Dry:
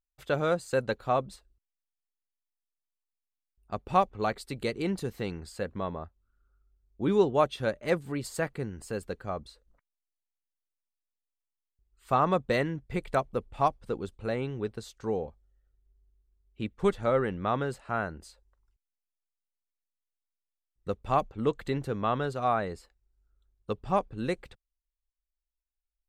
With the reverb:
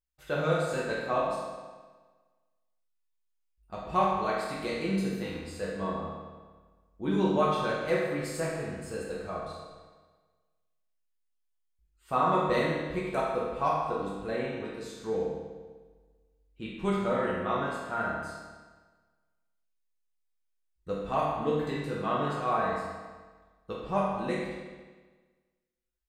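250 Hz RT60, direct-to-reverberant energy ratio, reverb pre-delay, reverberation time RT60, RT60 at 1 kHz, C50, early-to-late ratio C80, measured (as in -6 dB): 1.4 s, -7.0 dB, 6 ms, 1.4 s, 1.4 s, -0.5 dB, 2.0 dB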